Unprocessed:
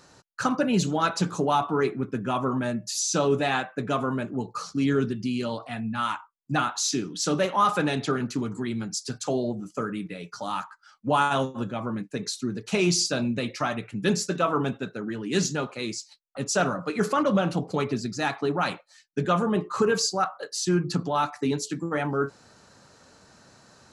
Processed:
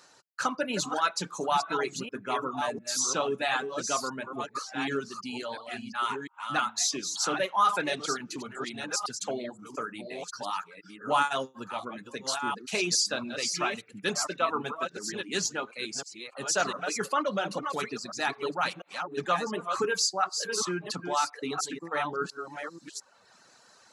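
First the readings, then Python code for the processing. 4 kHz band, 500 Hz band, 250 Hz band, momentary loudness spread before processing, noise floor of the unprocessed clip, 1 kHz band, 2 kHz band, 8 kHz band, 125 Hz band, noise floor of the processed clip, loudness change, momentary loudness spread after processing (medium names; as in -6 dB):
0.0 dB, -5.5 dB, -10.5 dB, 9 LU, -58 dBFS, -2.0 dB, -0.5 dB, 0.0 dB, -15.0 dB, -59 dBFS, -3.5 dB, 11 LU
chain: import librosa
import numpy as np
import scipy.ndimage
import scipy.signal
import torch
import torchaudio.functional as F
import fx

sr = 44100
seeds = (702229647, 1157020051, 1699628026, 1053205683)

y = fx.reverse_delay(x, sr, ms=697, wet_db=-6.0)
y = fx.highpass(y, sr, hz=790.0, slope=6)
y = fx.dereverb_blind(y, sr, rt60_s=0.81)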